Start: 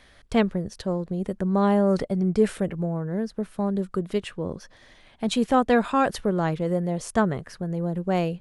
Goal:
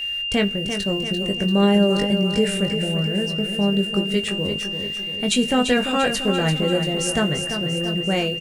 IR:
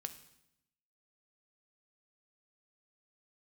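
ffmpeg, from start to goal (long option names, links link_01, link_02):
-filter_complex "[0:a]equalizer=frequency=1000:width_type=o:width=1:gain=-9,equalizer=frequency=2000:width_type=o:width=1:gain=6,equalizer=frequency=8000:width_type=o:width=1:gain=7,asplit=2[link_01][link_02];[link_02]alimiter=limit=-15dB:level=0:latency=1:release=495,volume=1.5dB[link_03];[link_01][link_03]amix=inputs=2:normalize=0,acrusher=bits=7:mix=0:aa=0.5,aeval=exprs='val(0)+0.0708*sin(2*PI*2800*n/s)':channel_layout=same,asplit=2[link_04][link_05];[link_05]adelay=20,volume=-6dB[link_06];[link_04][link_06]amix=inputs=2:normalize=0,aecho=1:1:342|684|1026|1368|1710|2052:0.398|0.211|0.112|0.0593|0.0314|0.0166,asplit=2[link_07][link_08];[1:a]atrim=start_sample=2205,highshelf=frequency=7700:gain=7.5[link_09];[link_08][link_09]afir=irnorm=-1:irlink=0,volume=-3.5dB[link_10];[link_07][link_10]amix=inputs=2:normalize=0,volume=-7dB"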